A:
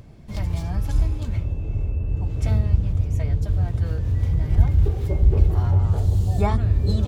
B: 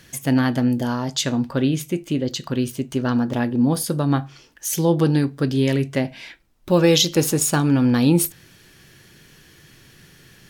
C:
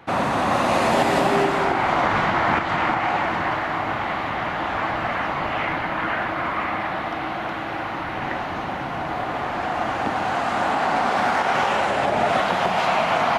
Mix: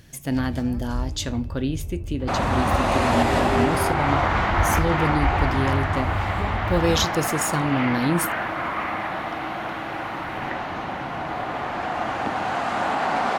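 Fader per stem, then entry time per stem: -7.5, -6.0, -2.0 dB; 0.00, 0.00, 2.20 s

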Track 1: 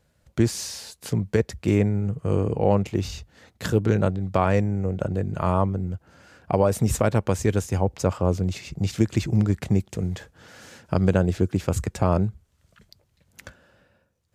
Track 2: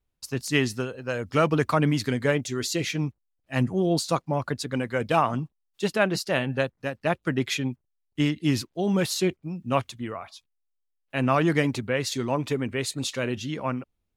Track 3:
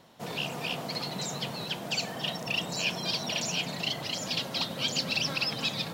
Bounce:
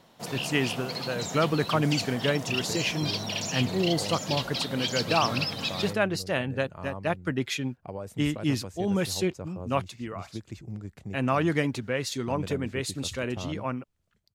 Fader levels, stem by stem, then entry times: -17.5, -3.0, -0.5 dB; 1.35, 0.00, 0.00 s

